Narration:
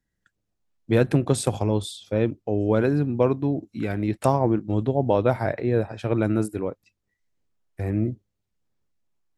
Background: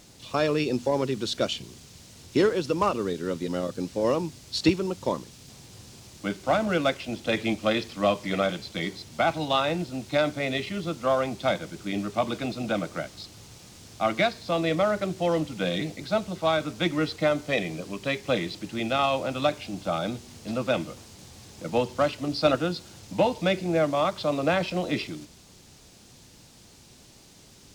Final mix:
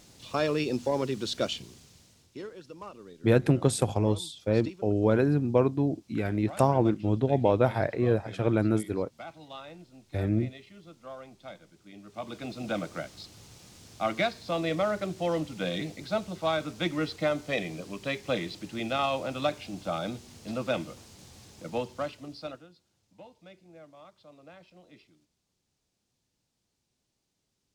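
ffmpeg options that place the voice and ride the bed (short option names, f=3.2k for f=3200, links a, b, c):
-filter_complex "[0:a]adelay=2350,volume=-2.5dB[a];[1:a]volume=12.5dB,afade=t=out:st=1.53:d=0.82:silence=0.149624,afade=t=in:st=12.02:d=0.72:silence=0.16788,afade=t=out:st=21.37:d=1.3:silence=0.0668344[b];[a][b]amix=inputs=2:normalize=0"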